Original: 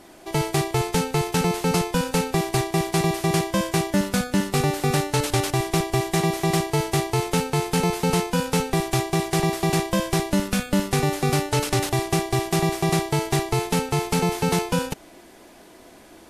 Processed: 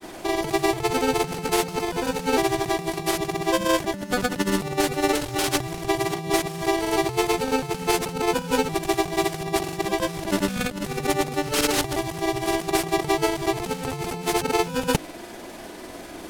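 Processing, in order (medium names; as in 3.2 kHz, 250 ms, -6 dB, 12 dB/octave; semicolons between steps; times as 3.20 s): treble shelf 9 kHz +4 dB; compressor with a negative ratio -27 dBFS, ratio -0.5; granulator, pitch spread up and down by 0 st; decimation joined by straight lines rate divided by 2×; trim +5.5 dB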